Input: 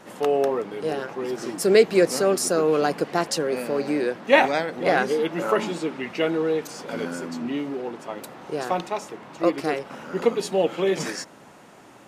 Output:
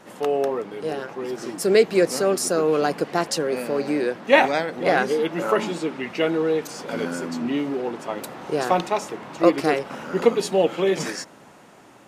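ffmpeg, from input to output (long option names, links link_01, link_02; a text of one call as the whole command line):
ffmpeg -i in.wav -af "dynaudnorm=framelen=540:gausssize=9:maxgain=11.5dB,volume=-1dB" out.wav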